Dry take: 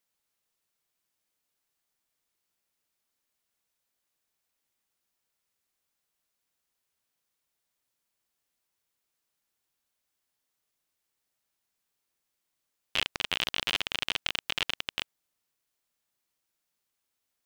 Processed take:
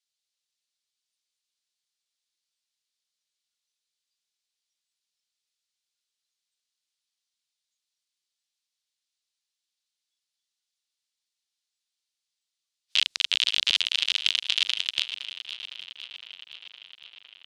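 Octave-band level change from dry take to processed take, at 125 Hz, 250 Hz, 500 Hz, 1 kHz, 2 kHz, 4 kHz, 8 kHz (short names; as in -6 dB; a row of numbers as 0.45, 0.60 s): under -20 dB, under -15 dB, under -10 dB, -7.0 dB, +3.0 dB, +8.5 dB, +7.0 dB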